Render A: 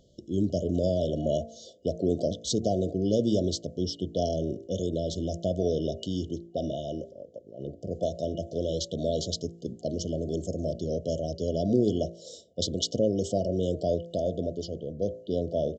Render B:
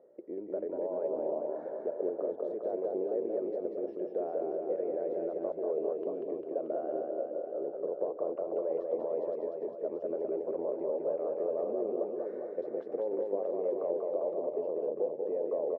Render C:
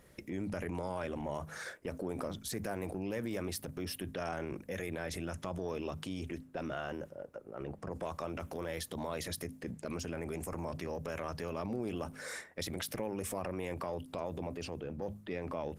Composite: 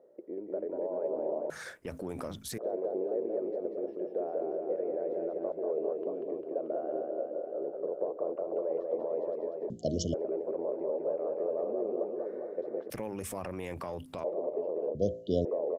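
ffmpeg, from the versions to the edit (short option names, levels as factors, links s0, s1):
-filter_complex "[2:a]asplit=2[s0][s1];[0:a]asplit=2[s2][s3];[1:a]asplit=5[s4][s5][s6][s7][s8];[s4]atrim=end=1.502[s9];[s0]atrim=start=1.498:end=2.582[s10];[s5]atrim=start=2.578:end=9.702[s11];[s2]atrim=start=9.698:end=10.142[s12];[s6]atrim=start=10.138:end=12.902[s13];[s1]atrim=start=12.898:end=14.242[s14];[s7]atrim=start=14.238:end=14.952[s15];[s3]atrim=start=14.948:end=15.452[s16];[s8]atrim=start=15.448[s17];[s9][s10]acrossfade=d=0.004:c1=hsin:c2=hsin[s18];[s18][s11]acrossfade=d=0.004:c1=hsin:c2=hsin[s19];[s19][s12]acrossfade=d=0.004:c1=hsin:c2=hsin[s20];[s20][s13]acrossfade=d=0.004:c1=hsin:c2=hsin[s21];[s21][s14]acrossfade=d=0.004:c1=hsin:c2=hsin[s22];[s22][s15]acrossfade=d=0.004:c1=hsin:c2=hsin[s23];[s23][s16]acrossfade=d=0.004:c1=hsin:c2=hsin[s24];[s24][s17]acrossfade=d=0.004:c1=hsin:c2=hsin"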